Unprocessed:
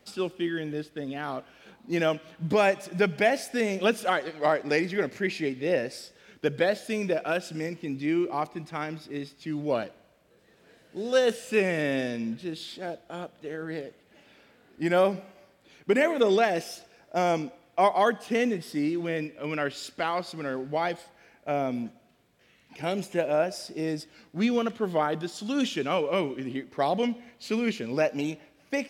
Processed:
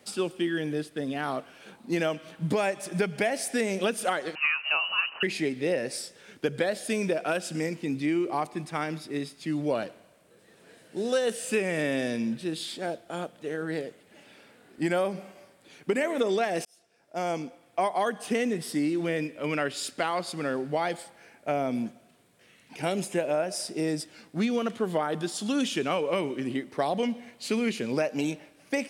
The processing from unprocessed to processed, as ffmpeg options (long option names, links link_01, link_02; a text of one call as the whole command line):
ffmpeg -i in.wav -filter_complex "[0:a]asettb=1/sr,asplit=3[link_01][link_02][link_03];[link_01]atrim=end=4.354[link_04];[link_02]atrim=start=4.35:end=5.23,asetpts=PTS-STARTPTS,afade=type=in:duration=0.004:curve=qsin,afade=type=out:start_time=0.876:duration=0.004:curve=qsin,lowpass=frequency=2600:width_type=q:width=0.5098,lowpass=frequency=2600:width_type=q:width=0.6013,lowpass=frequency=2600:width_type=q:width=0.9,lowpass=frequency=2600:width_type=q:width=2.563,afreqshift=-3100[link_05];[link_03]atrim=start=5.226[link_06];[link_04][link_05]acrossfade=duration=0.004:curve1=hsin:curve2=qsin[link_07];[link_07][link_06]acrossfade=duration=0.004:curve1=qsin:curve2=hsin,asplit=2[link_08][link_09];[link_08]atrim=end=16.65,asetpts=PTS-STARTPTS,afade=type=out:start_time=16.646:duration=0.004:curve=hsin[link_10];[link_09]atrim=start=16.65,asetpts=PTS-STARTPTS,afade=type=in:duration=1.44[link_11];[link_10][link_11]concat=n=2:v=0:a=1,highpass=100,equalizer=frequency=9100:width_type=o:width=0.5:gain=10,acompressor=threshold=-26dB:ratio=6,volume=3dB" out.wav